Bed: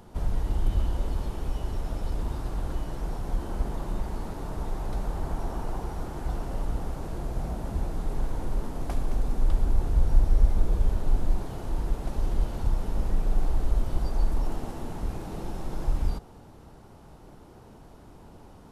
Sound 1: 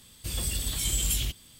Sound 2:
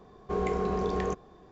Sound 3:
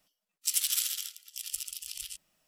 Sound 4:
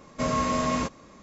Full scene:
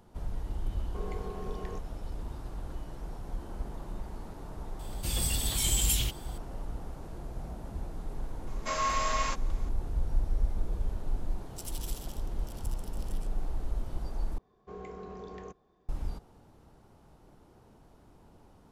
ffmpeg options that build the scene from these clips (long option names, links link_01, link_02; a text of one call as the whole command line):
ffmpeg -i bed.wav -i cue0.wav -i cue1.wav -i cue2.wav -i cue3.wav -filter_complex "[2:a]asplit=2[link_01][link_02];[0:a]volume=-8.5dB[link_03];[4:a]highpass=870[link_04];[link_03]asplit=2[link_05][link_06];[link_05]atrim=end=14.384[link_07];[link_02]atrim=end=1.51,asetpts=PTS-STARTPTS,volume=-14.5dB[link_08];[link_06]atrim=start=15.886[link_09];[link_01]atrim=end=1.51,asetpts=PTS-STARTPTS,volume=-12dB,afade=type=in:duration=0.004:curve=hsin,afade=type=out:start_time=1.506:duration=0.004:curve=hsin,adelay=650[link_10];[1:a]atrim=end=1.59,asetpts=PTS-STARTPTS,afade=type=in:duration=0.004:curve=hsin,afade=type=out:start_time=1.586:duration=0.004:curve=hsin,adelay=4790[link_11];[link_04]atrim=end=1.22,asetpts=PTS-STARTPTS,volume=-0.5dB,afade=type=in:duration=0.004:curve=hsin,afade=type=out:start_time=1.216:duration=0.004:curve=hsin,adelay=8470[link_12];[3:a]atrim=end=2.47,asetpts=PTS-STARTPTS,volume=-15.5dB,afade=type=in:duration=0.004:curve=hsin,afade=type=out:start_time=2.466:duration=0.004:curve=hsin,adelay=11110[link_13];[link_07][link_08]acrossfade=duration=0.004:curve1=hsin:curve2=hsin[link_14];[link_14][link_09]acrossfade=duration=0.004:curve1=hsin:curve2=hsin[link_15];[link_15][link_10][link_11][link_12][link_13]amix=inputs=5:normalize=0" out.wav